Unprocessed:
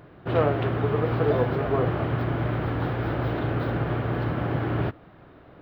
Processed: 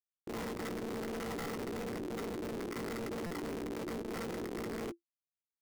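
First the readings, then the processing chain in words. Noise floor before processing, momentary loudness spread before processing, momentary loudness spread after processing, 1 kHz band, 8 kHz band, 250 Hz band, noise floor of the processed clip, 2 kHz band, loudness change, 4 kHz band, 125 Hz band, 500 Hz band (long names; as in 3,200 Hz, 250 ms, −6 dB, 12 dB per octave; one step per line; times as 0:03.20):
−50 dBFS, 4 LU, 2 LU, −14.5 dB, can't be measured, −10.5 dB, below −85 dBFS, −11.5 dB, −14.0 dB, −6.0 dB, −23.5 dB, −13.5 dB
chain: transistor ladder low-pass 1,700 Hz, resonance 90%
parametric band 430 Hz −8.5 dB 2.9 octaves
phaser with its sweep stopped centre 1,200 Hz, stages 6
flanger 1.4 Hz, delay 6.3 ms, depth 1.3 ms, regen +52%
comparator with hysteresis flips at −41 dBFS
ring modulation 340 Hz
double-tracking delay 17 ms −8.5 dB
buffer that repeats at 0:03.26, samples 256, times 7
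level +9 dB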